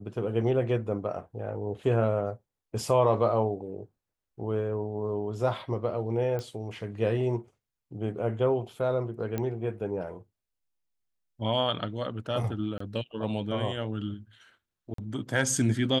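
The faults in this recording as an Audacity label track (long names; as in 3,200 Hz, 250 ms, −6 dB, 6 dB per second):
6.390000	6.390000	click −22 dBFS
9.380000	9.380000	click −18 dBFS
12.780000	12.800000	drop-out 24 ms
14.940000	14.980000	drop-out 43 ms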